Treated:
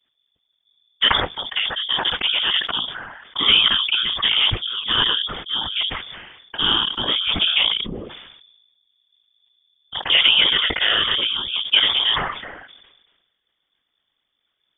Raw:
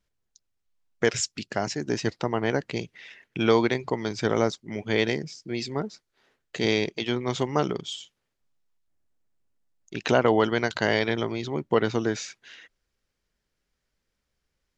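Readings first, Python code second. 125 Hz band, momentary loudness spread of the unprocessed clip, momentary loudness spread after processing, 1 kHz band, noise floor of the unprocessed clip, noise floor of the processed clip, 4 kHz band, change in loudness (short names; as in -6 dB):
-5.0 dB, 12 LU, 16 LU, +3.0 dB, -80 dBFS, -74 dBFS, +20.5 dB, +9.0 dB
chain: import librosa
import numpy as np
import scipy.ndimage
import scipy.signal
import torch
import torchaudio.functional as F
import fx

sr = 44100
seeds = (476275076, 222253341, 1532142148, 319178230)

y = fx.rattle_buzz(x, sr, strikes_db=-31.0, level_db=-28.0)
y = fx.vibrato(y, sr, rate_hz=0.52, depth_cents=34.0)
y = fx.whisperise(y, sr, seeds[0])
y = fx.freq_invert(y, sr, carrier_hz=3500)
y = fx.sustainer(y, sr, db_per_s=45.0)
y = y * librosa.db_to_amplitude(4.5)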